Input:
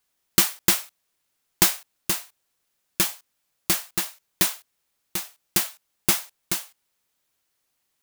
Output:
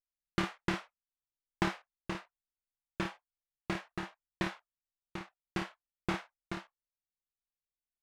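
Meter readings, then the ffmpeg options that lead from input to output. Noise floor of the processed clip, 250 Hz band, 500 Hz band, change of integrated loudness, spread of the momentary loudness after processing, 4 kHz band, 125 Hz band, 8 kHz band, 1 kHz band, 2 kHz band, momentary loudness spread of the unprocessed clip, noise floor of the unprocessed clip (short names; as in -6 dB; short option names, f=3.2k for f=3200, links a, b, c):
under -85 dBFS, -4.0 dB, -4.5 dB, -16.0 dB, 12 LU, -18.0 dB, -4.0 dB, -31.0 dB, -5.0 dB, -8.5 dB, 12 LU, -75 dBFS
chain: -filter_complex "[0:a]lowpass=1.8k,anlmdn=0.00631,asplit=2[a][b];[b]aecho=0:1:27|54:0.473|0.422[c];[a][c]amix=inputs=2:normalize=0,volume=-6dB"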